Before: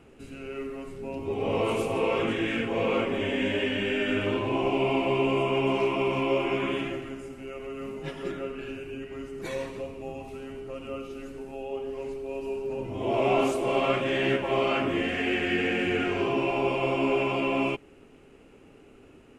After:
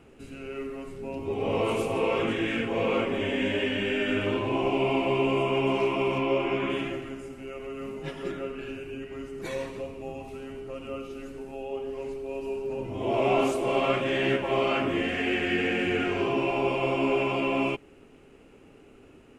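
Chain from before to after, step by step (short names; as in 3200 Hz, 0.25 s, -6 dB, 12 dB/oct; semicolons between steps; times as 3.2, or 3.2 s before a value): 6.18–6.7 high shelf 7900 Hz -11.5 dB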